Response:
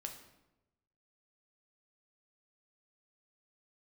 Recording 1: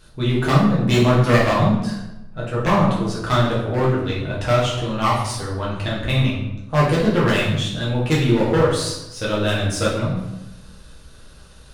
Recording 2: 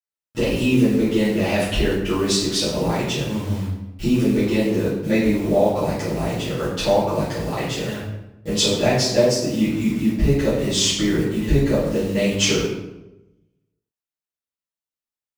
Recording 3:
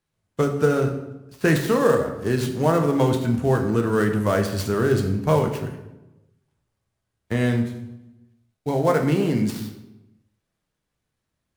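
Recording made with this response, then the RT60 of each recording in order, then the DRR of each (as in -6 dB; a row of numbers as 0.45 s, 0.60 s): 3; 0.95 s, 0.95 s, 0.95 s; -6.5 dB, -13.5 dB, 3.5 dB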